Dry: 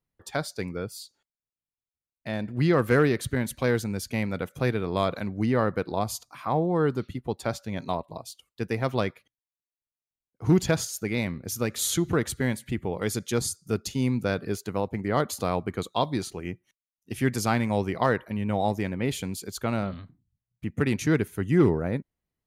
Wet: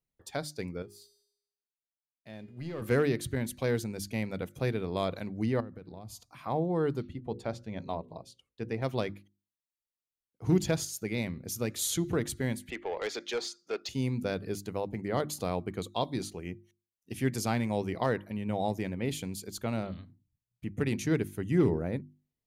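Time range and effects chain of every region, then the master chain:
0:00.82–0:02.82: leveller curve on the samples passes 1 + tuned comb filter 410 Hz, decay 0.82 s, mix 80%
0:05.60–0:06.44: bass and treble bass +8 dB, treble −3 dB + downward compressor, threshold −37 dBFS
0:07.02–0:08.82: Bessel low-pass filter 8,600 Hz + high-shelf EQ 3,700 Hz −9 dB + mains-hum notches 60/120/180/240/300/360/420/480/540 Hz
0:12.70–0:13.89: Bessel high-pass filter 480 Hz, order 4 + high-frequency loss of the air 200 metres + mid-hump overdrive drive 18 dB, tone 6,500 Hz, clips at −18 dBFS
whole clip: parametric band 1,300 Hz −5.5 dB 1.1 octaves; mains-hum notches 50/100/150/200/250/300/350 Hz; level −4 dB

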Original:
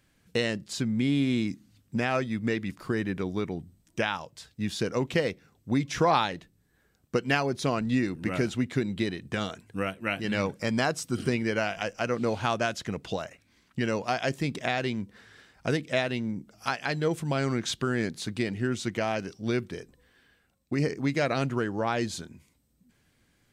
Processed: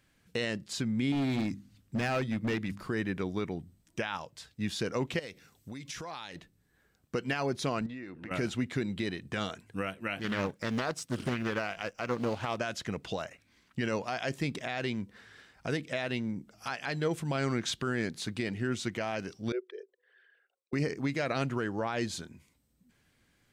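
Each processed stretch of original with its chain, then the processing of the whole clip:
0:01.12–0:02.88: low-shelf EQ 170 Hz +6.5 dB + mains-hum notches 50/100/150/200/250 Hz + hard clipping −24 dBFS
0:05.19–0:06.36: high-shelf EQ 2,900 Hz +11.5 dB + downward compressor 10 to 1, threshold −36 dBFS
0:07.86–0:08.31: bass and treble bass −7 dB, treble −14 dB + downward compressor 5 to 1, threshold −37 dBFS
0:10.19–0:12.58: mu-law and A-law mismatch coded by A + highs frequency-modulated by the lows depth 0.47 ms
0:19.52–0:20.73: spectral envelope exaggerated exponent 2 + Chebyshev high-pass filter 380 Hz, order 6
whole clip: parametric band 1,900 Hz +2.5 dB 2.6 octaves; brickwall limiter −18 dBFS; level −3 dB

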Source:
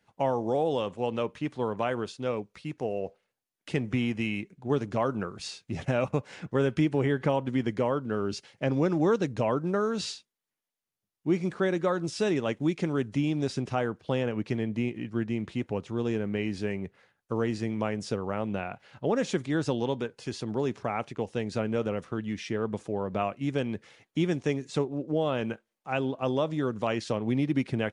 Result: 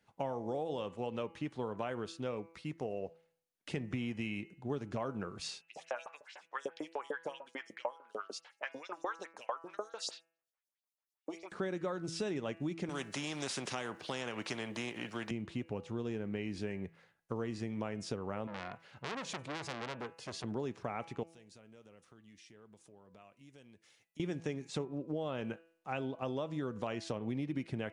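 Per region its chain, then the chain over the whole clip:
0:05.61–0:11.52: auto-filter high-pass saw up 6.7 Hz 500–6,800 Hz + phaser with staggered stages 4.7 Hz
0:12.89–0:15.31: high-pass filter 220 Hz + every bin compressed towards the loudest bin 2 to 1
0:18.47–0:20.44: high-pass filter 61 Hz 6 dB per octave + saturating transformer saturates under 3,100 Hz
0:21.23–0:24.20: first-order pre-emphasis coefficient 0.8 + downward compressor 2.5 to 1, threshold −56 dBFS
whole clip: hum removal 165.3 Hz, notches 18; downward compressor 3 to 1, threshold −32 dBFS; level −3.5 dB

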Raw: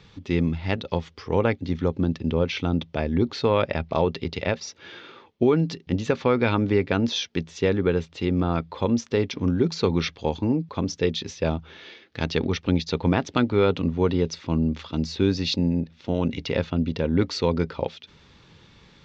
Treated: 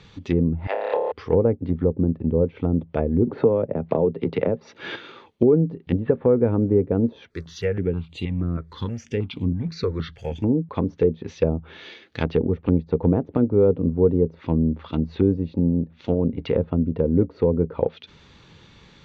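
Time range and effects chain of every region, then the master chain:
0:00.67–0:01.12: high-pass filter 520 Hz 24 dB per octave + flutter between parallel walls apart 4.9 metres, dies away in 1.5 s
0:03.27–0:04.96: high-pass filter 110 Hz 24 dB per octave + multiband upward and downward compressor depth 70%
0:06.00–0:06.66: Butterworth low-pass 3,800 Hz + parametric band 1,700 Hz +5 dB 0.41 octaves + one half of a high-frequency compander decoder only
0:07.30–0:10.44: mu-law and A-law mismatch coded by mu + parametric band 640 Hz −9 dB 2.4 octaves + step-sequenced phaser 6.3 Hz 800–5,400 Hz
whole clip: treble cut that deepens with the level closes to 490 Hz, closed at −20.5 dBFS; notch filter 5,200 Hz, Q 13; dynamic equaliser 470 Hz, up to +7 dB, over −41 dBFS, Q 5.5; level +2.5 dB

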